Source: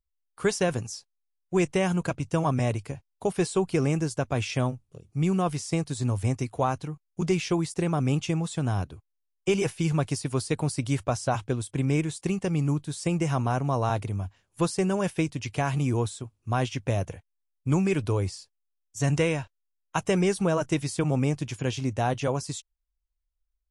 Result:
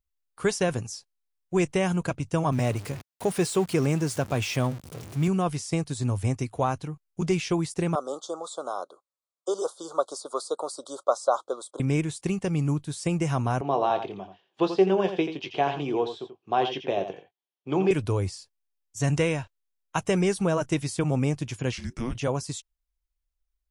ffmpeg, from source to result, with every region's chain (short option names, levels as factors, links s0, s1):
-filter_complex "[0:a]asettb=1/sr,asplit=3[s0][s1][s2];[s0]atrim=end=2.524[s3];[s1]atrim=start=2.52:end=5.28,asetpts=PTS-STARTPTS,afade=t=in:d=0.004:c=qsin,afade=t=out:st=2.756:d=0.004:c=qsin,aeval=exprs='val(0)+0.5*0.0178*sgn(val(0))':c=same,highpass=89[s4];[s2]atrim=start=5.276[s5];[s3][s4]acrossfade=d=0.004:c1=hsin:c2=qsin[s6];[s6][s5]acrossfade=d=0.004:c1=qsin:c2=hsin,asettb=1/sr,asplit=3[s7][s8][s9];[s7]atrim=end=7.954[s10];[s8]atrim=start=7.95:end=11.8,asetpts=PTS-STARTPTS,afade=t=in:d=0.004:c=qsin,afade=t=out:st=3.846:d=0.004:c=qsin,asuperstop=centerf=2200:order=12:qfactor=1.1,highpass=f=420:w=0.5412,highpass=f=420:w=1.3066,equalizer=f=560:t=q:w=4:g=9,equalizer=f=1200:t=q:w=4:g=9,equalizer=f=2300:t=q:w=4:g=-7,equalizer=f=5600:t=q:w=4:g=-5,lowpass=f=9100:w=0.5412,lowpass=f=9100:w=1.3066[s11];[s9]atrim=start=11.796[s12];[s10][s11]acrossfade=d=0.004:c1=hsin:c2=qsin[s13];[s13][s12]acrossfade=d=0.004:c1=qsin:c2=hsin,asettb=1/sr,asplit=3[s14][s15][s16];[s14]atrim=end=13.614[s17];[s15]atrim=start=13.61:end=17.91,asetpts=PTS-STARTPTS,afade=t=in:d=0.004:c=qsin,afade=t=out:st=4.296:d=0.004:c=qsin,highpass=f=200:w=0.5412,highpass=f=200:w=1.3066,equalizer=f=240:t=q:w=4:g=-8,equalizer=f=390:t=q:w=4:g=8,equalizer=f=750:t=q:w=4:g=7,equalizer=f=1400:t=q:w=4:g=-4,equalizer=f=2100:t=q:w=4:g=-4,equalizer=f=3200:t=q:w=4:g=7,lowpass=f=4300:w=0.5412,lowpass=f=4300:w=1.3066,asplit=2[s18][s19];[s19]adelay=21,volume=0.299[s20];[s18][s20]amix=inputs=2:normalize=0,atrim=end_sample=189630,aecho=1:1:85:0.335,atrim=end_sample=189630[s21];[s16]atrim=start=17.906[s22];[s17][s21]acrossfade=d=0.004:c1=hsin:c2=qsin[s23];[s23][s22]acrossfade=d=0.004:c1=qsin:c2=hsin,asettb=1/sr,asplit=3[s24][s25][s26];[s24]atrim=end=21.724[s27];[s25]atrim=start=21.72:end=22.15,asetpts=PTS-STARTPTS,afade=t=in:d=0.004:c=qsin,afade=t=out:st=0.426:d=0.004:c=qsin,highpass=f=430:t=q:w=2.3,acompressor=threshold=0.0355:ratio=2:attack=3.2:release=140:knee=1:detection=peak,afreqshift=-480[s28];[s26]atrim=start=22.146[s29];[s27][s28]acrossfade=d=0.004:c1=hsin:c2=qsin[s30];[s30][s29]acrossfade=d=0.004:c1=qsin:c2=hsin"